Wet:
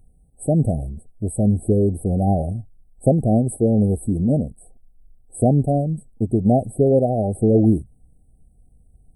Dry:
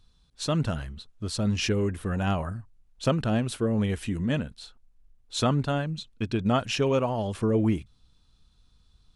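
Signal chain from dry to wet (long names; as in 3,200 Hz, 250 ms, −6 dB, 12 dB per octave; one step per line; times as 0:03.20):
brick-wall band-stop 800–7,900 Hz
level +8.5 dB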